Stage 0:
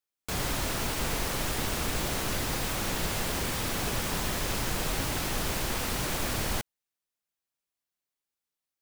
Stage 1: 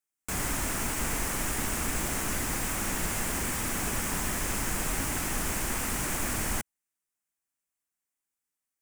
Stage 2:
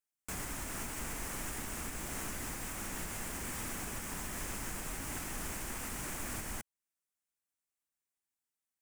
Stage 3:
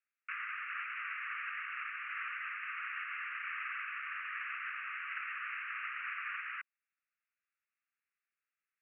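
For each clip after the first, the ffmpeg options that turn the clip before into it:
-af "equalizer=f=125:t=o:w=1:g=-4,equalizer=f=250:t=o:w=1:g=3,equalizer=f=500:t=o:w=1:g=-5,equalizer=f=2k:t=o:w=1:g=3,equalizer=f=4k:t=o:w=1:g=-10,equalizer=f=8k:t=o:w=1:g=7"
-af "alimiter=level_in=0.5dB:limit=-24dB:level=0:latency=1:release=346,volume=-0.5dB,volume=-5dB"
-af "asuperpass=centerf=1800:order=20:qfactor=1.1,volume=8dB"

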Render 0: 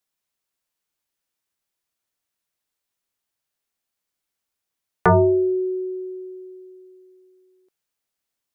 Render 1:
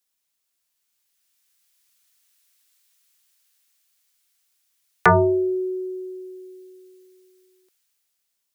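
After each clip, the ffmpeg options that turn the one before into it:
-filter_complex "[0:a]highshelf=f=2.3k:g=9,acrossover=split=190|1200[a][b][c];[c]dynaudnorm=f=390:g=7:m=12dB[d];[a][b][d]amix=inputs=3:normalize=0,volume=-2.5dB"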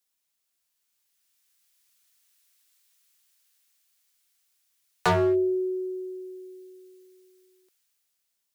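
-af "asoftclip=type=hard:threshold=-16dB,volume=-2dB"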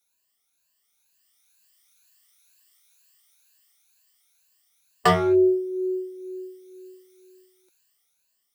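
-af "afftfilt=real='re*pow(10,14/40*sin(2*PI*(1.4*log(max(b,1)*sr/1024/100)/log(2)-(2.1)*(pts-256)/sr)))':imag='im*pow(10,14/40*sin(2*PI*(1.4*log(max(b,1)*sr/1024/100)/log(2)-(2.1)*(pts-256)/sr)))':win_size=1024:overlap=0.75,volume=2dB"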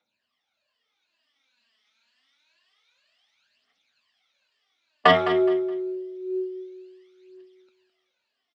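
-af "highpass=140,equalizer=f=160:t=q:w=4:g=-7,equalizer=f=240:t=q:w=4:g=8,equalizer=f=360:t=q:w=4:g=-5,equalizer=f=630:t=q:w=4:g=7,lowpass=f=3.9k:w=0.5412,lowpass=f=3.9k:w=1.3066,aphaser=in_gain=1:out_gain=1:delay=4.8:decay=0.64:speed=0.27:type=triangular,aecho=1:1:210|420|630:0.266|0.0718|0.0194,volume=3dB"

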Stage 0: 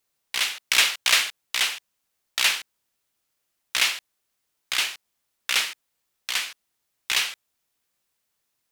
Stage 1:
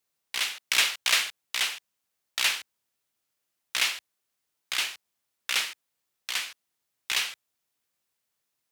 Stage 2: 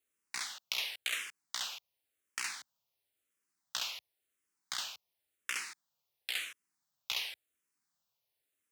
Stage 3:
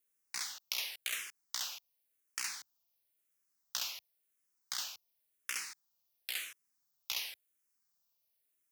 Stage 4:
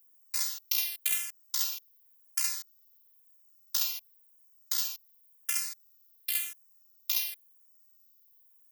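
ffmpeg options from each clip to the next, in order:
-af "highpass=63,volume=-4dB"
-filter_complex "[0:a]acompressor=threshold=-28dB:ratio=10,asplit=2[a][b];[b]afreqshift=-0.94[c];[a][c]amix=inputs=2:normalize=1,volume=-1.5dB"
-af "aexciter=amount=1.7:drive=6.2:freq=4.9k,volume=-3.5dB"
-af "afftfilt=real='hypot(re,im)*cos(PI*b)':imag='0':win_size=512:overlap=0.75,aemphasis=mode=production:type=50fm,volume=2.5dB"

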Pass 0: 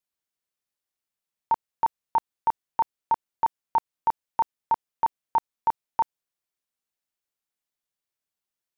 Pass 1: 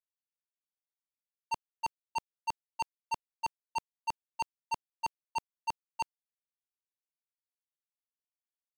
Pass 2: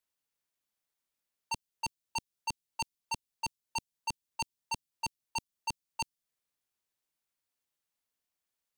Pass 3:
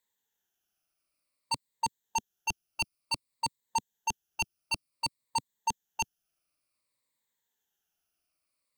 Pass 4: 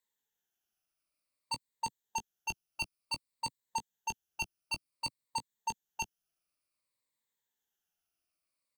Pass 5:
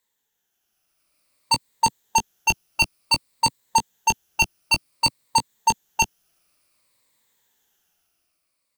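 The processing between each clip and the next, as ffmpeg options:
-af "highpass=f=390:p=1,volume=30dB,asoftclip=hard,volume=-30dB,agate=range=-33dB:threshold=-26dB:ratio=3:detection=peak,volume=10.5dB"
-filter_complex "[0:a]acrossover=split=300|3000[a][b][c];[b]acompressor=threshold=-46dB:ratio=6[d];[a][d][c]amix=inputs=3:normalize=0,volume=8dB"
-af "afftfilt=real='re*pow(10,12/40*sin(2*PI*(1*log(max(b,1)*sr/1024/100)/log(2)-(-0.55)*(pts-256)/sr)))':imag='im*pow(10,12/40*sin(2*PI*(1*log(max(b,1)*sr/1024/100)/log(2)-(-0.55)*(pts-256)/sr)))':win_size=1024:overlap=0.75,volume=2.5dB"
-filter_complex "[0:a]asplit=2[a][b];[b]adelay=18,volume=-11dB[c];[a][c]amix=inputs=2:normalize=0,volume=-5dB"
-filter_complex "[0:a]dynaudnorm=f=220:g=9:m=9dB,asplit=2[a][b];[b]asoftclip=type=hard:threshold=-29.5dB,volume=-4dB[c];[a][c]amix=inputs=2:normalize=0,volume=6dB"

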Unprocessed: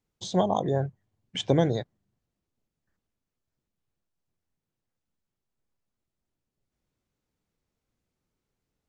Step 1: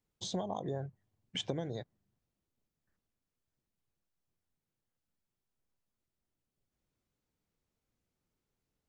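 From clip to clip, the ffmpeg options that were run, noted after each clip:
-af "acompressor=threshold=-29dB:ratio=16,volume=-3.5dB"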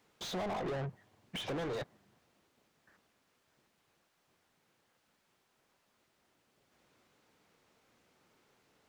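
-filter_complex "[0:a]asplit=2[a][b];[b]highpass=f=720:p=1,volume=39dB,asoftclip=type=tanh:threshold=-20.5dB[c];[a][c]amix=inputs=2:normalize=0,lowpass=f=2.2k:p=1,volume=-6dB,volume=-9dB"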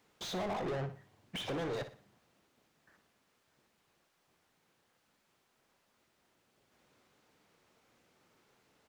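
-af "aecho=1:1:60|120|180|240:0.266|0.0931|0.0326|0.0114"

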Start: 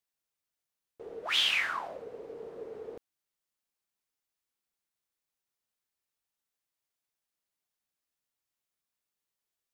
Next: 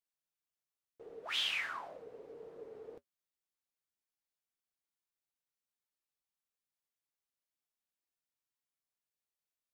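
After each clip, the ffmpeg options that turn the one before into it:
-af "flanger=delay=6.1:depth=1.5:regen=-60:speed=2:shape=triangular,volume=-3.5dB"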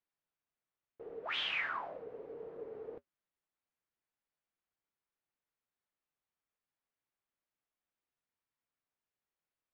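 -af "lowpass=2.3k,volume=4dB"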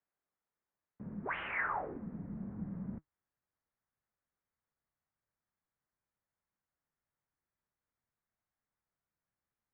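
-af "highpass=f=350:t=q:w=0.5412,highpass=f=350:t=q:w=1.307,lowpass=f=2.3k:t=q:w=0.5176,lowpass=f=2.3k:t=q:w=0.7071,lowpass=f=2.3k:t=q:w=1.932,afreqshift=-250,asubboost=boost=3.5:cutoff=170,volume=3dB"

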